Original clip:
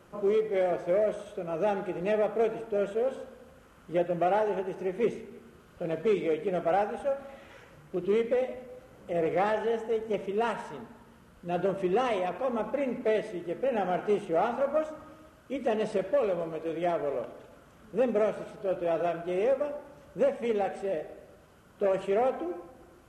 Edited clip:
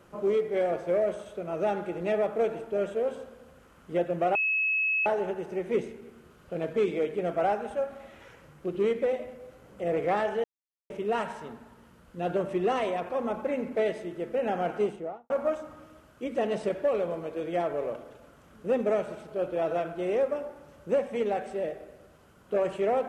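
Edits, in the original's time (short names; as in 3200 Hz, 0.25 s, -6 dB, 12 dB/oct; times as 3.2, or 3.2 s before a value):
4.35 add tone 2580 Hz -23.5 dBFS 0.71 s
9.73–10.19 mute
14.05–14.59 studio fade out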